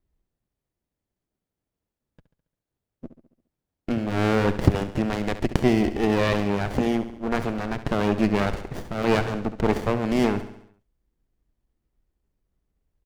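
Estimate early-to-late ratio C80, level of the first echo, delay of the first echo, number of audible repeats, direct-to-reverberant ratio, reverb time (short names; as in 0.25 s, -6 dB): none, -12.5 dB, 69 ms, 5, none, none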